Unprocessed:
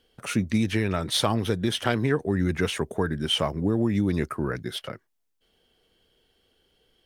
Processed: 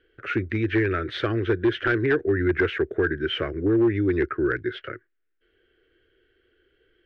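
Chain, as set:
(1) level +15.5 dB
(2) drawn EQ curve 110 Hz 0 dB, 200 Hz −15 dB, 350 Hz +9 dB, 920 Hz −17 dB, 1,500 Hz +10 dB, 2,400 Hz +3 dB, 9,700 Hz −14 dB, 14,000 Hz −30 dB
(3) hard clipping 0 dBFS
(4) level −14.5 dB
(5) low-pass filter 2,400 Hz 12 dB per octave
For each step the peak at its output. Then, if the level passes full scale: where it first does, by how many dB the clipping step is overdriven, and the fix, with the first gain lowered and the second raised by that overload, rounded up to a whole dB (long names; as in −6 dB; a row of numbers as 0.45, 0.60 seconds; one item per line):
+8.0, +9.0, 0.0, −14.5, −14.0 dBFS
step 1, 9.0 dB
step 1 +6.5 dB, step 4 −5.5 dB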